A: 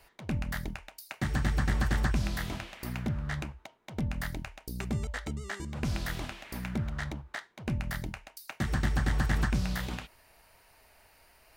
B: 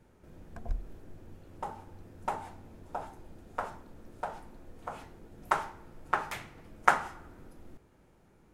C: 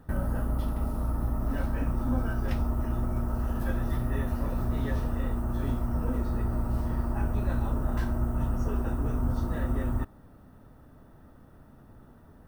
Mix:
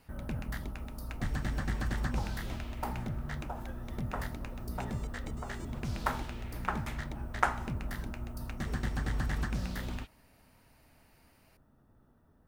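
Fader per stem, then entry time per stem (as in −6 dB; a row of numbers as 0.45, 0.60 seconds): −6.0, −5.0, −12.5 decibels; 0.00, 0.55, 0.00 seconds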